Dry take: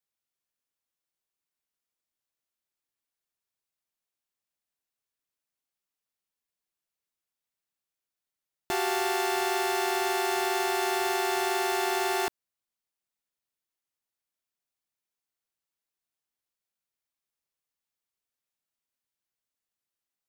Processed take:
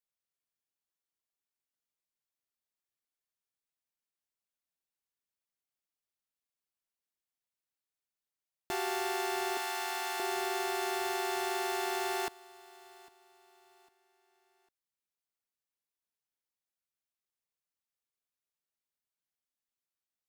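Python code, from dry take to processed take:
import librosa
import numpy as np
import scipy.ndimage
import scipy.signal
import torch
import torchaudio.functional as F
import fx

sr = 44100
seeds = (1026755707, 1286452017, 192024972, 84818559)

p1 = fx.highpass(x, sr, hz=700.0, slope=12, at=(9.57, 10.2))
p2 = p1 + fx.echo_feedback(p1, sr, ms=802, feedback_pct=36, wet_db=-21.5, dry=0)
y = p2 * librosa.db_to_amplitude(-6.0)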